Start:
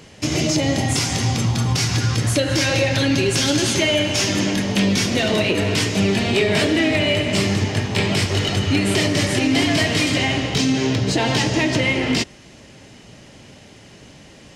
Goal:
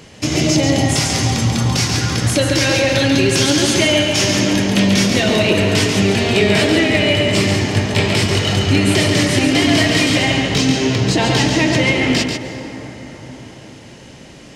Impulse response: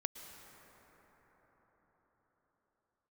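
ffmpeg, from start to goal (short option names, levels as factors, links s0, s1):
-filter_complex "[0:a]asplit=2[s0][s1];[1:a]atrim=start_sample=2205,adelay=139[s2];[s1][s2]afir=irnorm=-1:irlink=0,volume=0.631[s3];[s0][s3]amix=inputs=2:normalize=0,volume=1.41"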